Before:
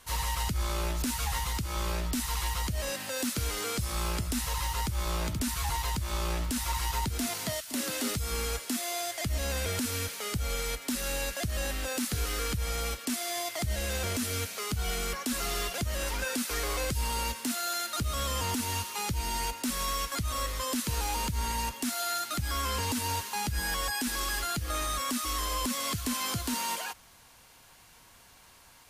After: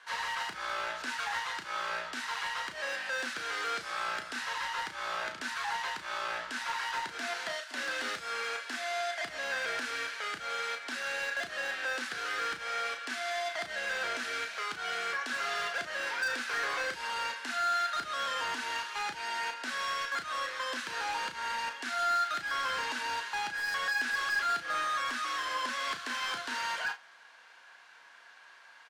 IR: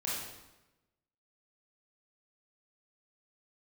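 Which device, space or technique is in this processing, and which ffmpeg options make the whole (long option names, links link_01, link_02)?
megaphone: -filter_complex "[0:a]highpass=630,lowpass=3800,equalizer=frequency=1600:width_type=o:width=0.35:gain=11.5,asoftclip=type=hard:threshold=-28.5dB,asplit=2[link_01][link_02];[link_02]adelay=33,volume=-8dB[link_03];[link_01][link_03]amix=inputs=2:normalize=0,asplit=2[link_04][link_05];[link_05]adelay=39,volume=-13dB[link_06];[link_04][link_06]amix=inputs=2:normalize=0"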